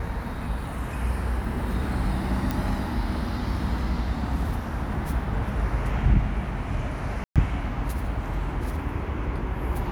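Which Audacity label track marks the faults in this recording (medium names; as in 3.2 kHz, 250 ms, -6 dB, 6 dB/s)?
2.510000	2.510000	pop
7.240000	7.360000	dropout 117 ms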